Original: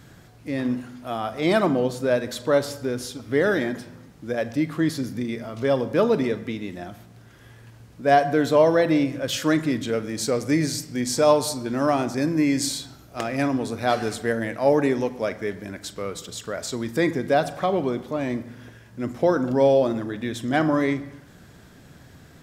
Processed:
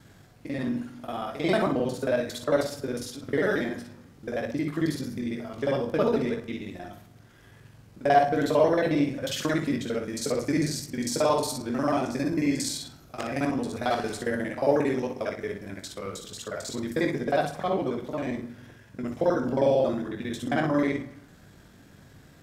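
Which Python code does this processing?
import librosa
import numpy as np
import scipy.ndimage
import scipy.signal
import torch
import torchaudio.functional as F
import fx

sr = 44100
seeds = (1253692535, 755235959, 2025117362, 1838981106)

y = fx.local_reverse(x, sr, ms=45.0)
y = fx.room_early_taps(y, sr, ms=(21, 59), db=(-7.5, -8.0))
y = y * librosa.db_to_amplitude(-5.0)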